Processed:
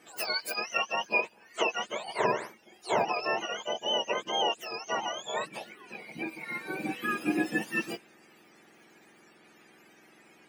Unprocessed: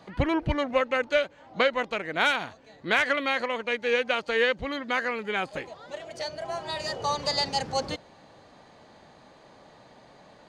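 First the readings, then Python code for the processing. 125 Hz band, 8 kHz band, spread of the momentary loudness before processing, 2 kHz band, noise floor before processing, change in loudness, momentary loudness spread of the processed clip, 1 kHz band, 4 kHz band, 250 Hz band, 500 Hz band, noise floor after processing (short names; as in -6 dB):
-10.5 dB, +0.5 dB, 11 LU, -5.5 dB, -54 dBFS, -4.0 dB, 11 LU, -2.5 dB, -2.0 dB, -2.5 dB, -6.0 dB, -59 dBFS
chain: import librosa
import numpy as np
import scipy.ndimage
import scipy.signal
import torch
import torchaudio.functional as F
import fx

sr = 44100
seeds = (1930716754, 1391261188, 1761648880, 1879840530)

y = fx.octave_mirror(x, sr, pivot_hz=1200.0)
y = fx.peak_eq(y, sr, hz=2200.0, db=2.0, octaves=0.77)
y = y * 10.0 ** (-2.5 / 20.0)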